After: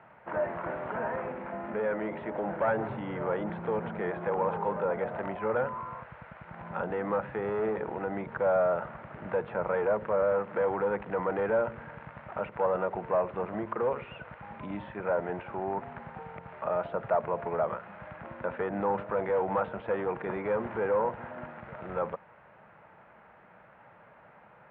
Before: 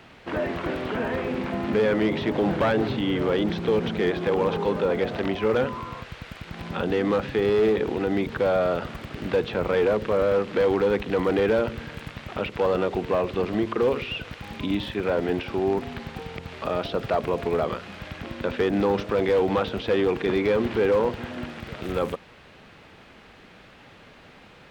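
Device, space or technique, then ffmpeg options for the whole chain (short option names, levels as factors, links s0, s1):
bass cabinet: -filter_complex "[0:a]asettb=1/sr,asplit=3[s0][s1][s2];[s0]atrim=end=1.324[s3];[s1]atrim=start=1.32:end=2.68,asetpts=PTS-STARTPTS,afade=t=in:d=0.004:c=qsin,afade=t=out:st=1.356:d=0.004:c=qsin,equalizer=f=125:t=o:w=1:g=-9,equalizer=f=1000:t=o:w=1:g=-4,equalizer=f=8000:t=o:w=1:g=-9[s4];[s2]atrim=start=2.676[s5];[s3][s4]acrossfade=d=0.004:c1=hsin:c2=qsin[s6];[s6][s5]acrossfade=d=0.004:c1=qsin:c2=hsin,highpass=80,equalizer=f=84:t=q:w=4:g=-8,equalizer=f=270:t=q:w=4:g=-10,equalizer=f=390:t=q:w=4:g=-5,equalizer=f=610:t=q:w=4:g=6,equalizer=f=910:t=q:w=4:g=8,equalizer=f=1400:t=q:w=4:g=4,lowpass=f=2000:w=0.5412,lowpass=f=2000:w=1.3066,volume=0.447"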